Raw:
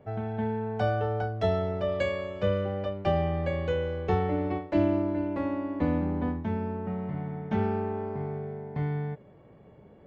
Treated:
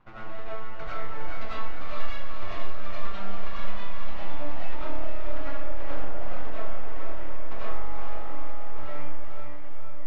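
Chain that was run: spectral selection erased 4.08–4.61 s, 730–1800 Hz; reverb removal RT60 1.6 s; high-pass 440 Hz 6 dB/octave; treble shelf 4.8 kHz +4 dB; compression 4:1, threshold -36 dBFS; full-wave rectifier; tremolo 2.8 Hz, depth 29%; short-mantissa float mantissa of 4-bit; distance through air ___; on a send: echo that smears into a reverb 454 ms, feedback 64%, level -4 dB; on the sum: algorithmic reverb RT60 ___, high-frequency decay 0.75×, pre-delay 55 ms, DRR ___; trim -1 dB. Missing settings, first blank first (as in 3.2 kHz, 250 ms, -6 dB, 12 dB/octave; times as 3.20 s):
160 m, 0.49 s, -8 dB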